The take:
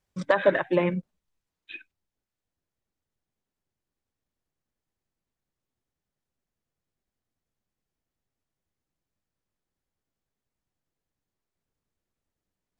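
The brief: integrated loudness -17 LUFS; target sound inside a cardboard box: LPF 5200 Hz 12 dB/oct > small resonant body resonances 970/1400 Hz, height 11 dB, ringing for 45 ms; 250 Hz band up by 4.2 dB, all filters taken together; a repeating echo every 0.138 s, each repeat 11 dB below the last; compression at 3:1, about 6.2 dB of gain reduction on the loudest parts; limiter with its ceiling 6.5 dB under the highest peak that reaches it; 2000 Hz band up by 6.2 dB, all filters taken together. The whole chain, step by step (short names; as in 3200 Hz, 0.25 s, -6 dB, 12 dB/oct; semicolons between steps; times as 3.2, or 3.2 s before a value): bell 250 Hz +7.5 dB; bell 2000 Hz +7.5 dB; compressor 3:1, threshold -22 dBFS; limiter -17.5 dBFS; LPF 5200 Hz 12 dB/oct; feedback echo 0.138 s, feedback 28%, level -11 dB; small resonant body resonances 970/1400 Hz, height 11 dB, ringing for 45 ms; gain +12.5 dB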